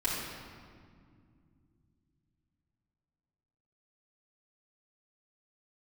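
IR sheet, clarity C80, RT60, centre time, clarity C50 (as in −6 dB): 1.5 dB, 2.2 s, 100 ms, −0.5 dB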